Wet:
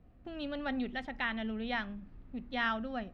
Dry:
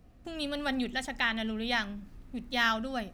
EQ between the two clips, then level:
high-frequency loss of the air 320 metres
−2.5 dB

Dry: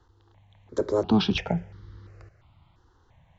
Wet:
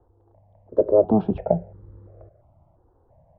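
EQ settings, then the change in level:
low-pass with resonance 620 Hz, resonance Q 4.9
0.0 dB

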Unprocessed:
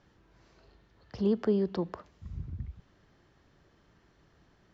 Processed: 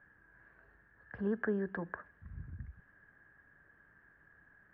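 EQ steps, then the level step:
transistor ladder low-pass 1,700 Hz, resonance 90%
notch filter 360 Hz, Q 12
+6.0 dB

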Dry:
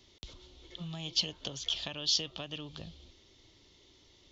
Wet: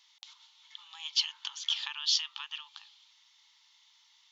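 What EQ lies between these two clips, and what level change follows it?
dynamic equaliser 1,600 Hz, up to +6 dB, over −48 dBFS, Q 0.73
linear-phase brick-wall high-pass 800 Hz
0.0 dB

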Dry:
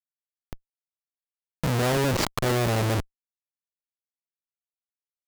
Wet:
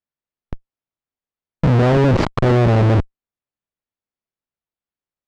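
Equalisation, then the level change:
head-to-tape spacing loss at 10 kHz 26 dB
low-shelf EQ 430 Hz +4 dB
+8.5 dB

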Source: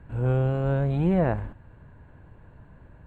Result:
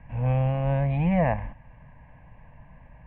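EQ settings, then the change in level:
low-pass with resonance 2,200 Hz, resonance Q 1.9
parametric band 86 Hz −12.5 dB 0.45 octaves
phaser with its sweep stopped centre 1,400 Hz, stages 6
+3.5 dB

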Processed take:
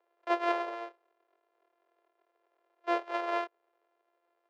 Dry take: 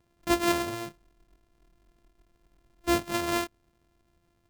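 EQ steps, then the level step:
Butterworth high-pass 410 Hz 48 dB per octave
head-to-tape spacing loss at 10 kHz 41 dB
+3.5 dB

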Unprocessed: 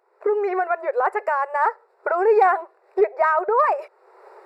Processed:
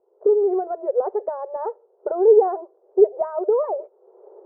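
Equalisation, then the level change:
transistor ladder low-pass 630 Hz, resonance 25%
mains-hum notches 50/100/150/200 Hz
+8.0 dB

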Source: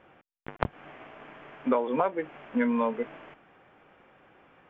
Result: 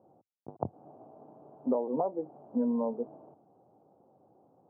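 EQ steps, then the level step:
elliptic band-pass filter 100–800 Hz, stop band 40 dB
−2.5 dB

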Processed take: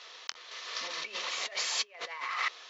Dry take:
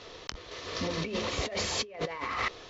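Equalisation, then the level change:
high-pass filter 1,100 Hz 12 dB per octave
+1.0 dB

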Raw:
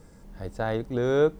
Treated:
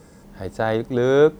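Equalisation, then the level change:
high-pass filter 120 Hz 6 dB per octave
+7.0 dB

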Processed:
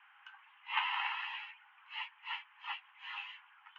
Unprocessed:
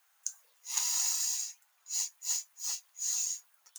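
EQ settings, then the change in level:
Chebyshev band-pass filter 800–3,100 Hz, order 5
high-frequency loss of the air 75 metres
+14.0 dB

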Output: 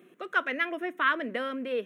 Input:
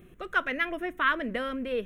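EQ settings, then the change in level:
high-pass filter 230 Hz 24 dB per octave
high-shelf EQ 8,800 Hz −6 dB
0.0 dB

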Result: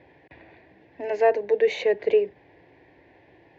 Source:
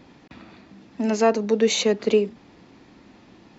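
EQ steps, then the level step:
high-pass filter 64 Hz
low-pass with resonance 1,800 Hz, resonance Q 3.1
phaser with its sweep stopped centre 530 Hz, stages 4
0.0 dB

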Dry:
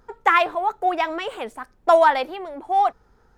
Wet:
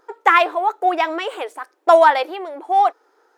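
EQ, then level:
linear-phase brick-wall high-pass 280 Hz
+3.5 dB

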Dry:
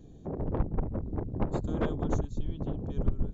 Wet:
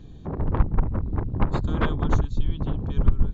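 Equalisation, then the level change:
low-shelf EQ 190 Hz +10.5 dB
flat-topped bell 2,100 Hz +11.5 dB 2.7 octaves
0.0 dB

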